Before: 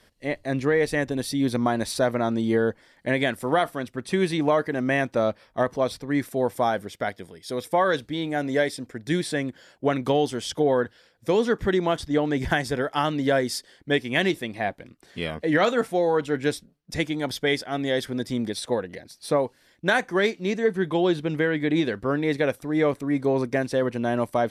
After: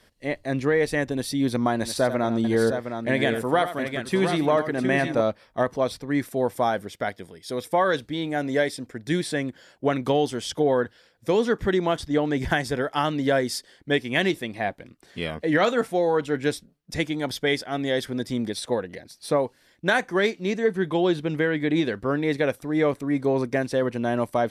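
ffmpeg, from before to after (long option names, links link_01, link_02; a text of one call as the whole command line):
ffmpeg -i in.wav -filter_complex "[0:a]asettb=1/sr,asplit=3[link_01][link_02][link_03];[link_01]atrim=end=1.734[link_04];[link_02]atrim=start=1.73:end=5.21,asetpts=PTS-STARTPTS,afade=type=in:duration=0.004:curve=qsin,afade=type=out:start_time=3.476:duration=0.004:curve=qsin,aecho=1:1:88|712:0.266|0.447,atrim=end_sample=153468[link_05];[link_03]atrim=start=5.206[link_06];[link_04][link_05]acrossfade=duration=0.004:curve1=hsin:curve2=qsin[link_07];[link_07][link_06]acrossfade=duration=0.004:curve1=qsin:curve2=hsin" out.wav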